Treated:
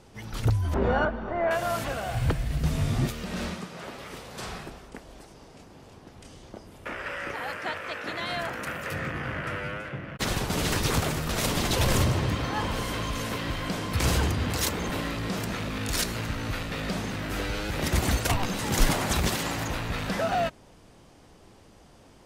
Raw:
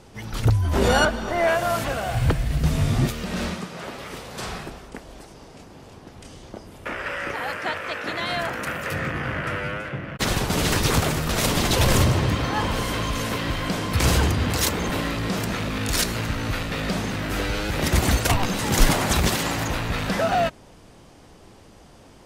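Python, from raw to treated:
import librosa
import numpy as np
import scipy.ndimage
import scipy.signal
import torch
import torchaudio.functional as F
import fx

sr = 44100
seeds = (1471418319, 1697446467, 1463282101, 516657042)

y = fx.lowpass(x, sr, hz=1600.0, slope=12, at=(0.74, 1.51))
y = y * librosa.db_to_amplitude(-5.0)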